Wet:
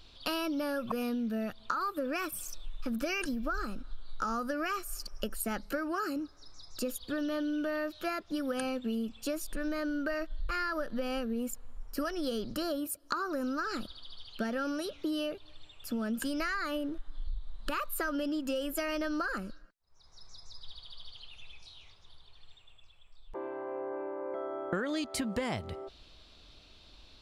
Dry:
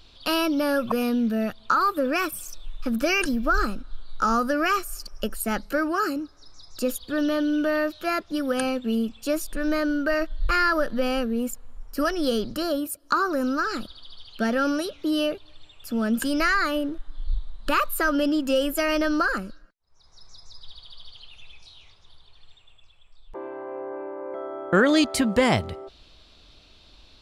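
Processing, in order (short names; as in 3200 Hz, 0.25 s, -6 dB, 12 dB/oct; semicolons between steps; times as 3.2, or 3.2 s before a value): compressor, threshold -27 dBFS, peak gain reduction 13 dB; gain -3.5 dB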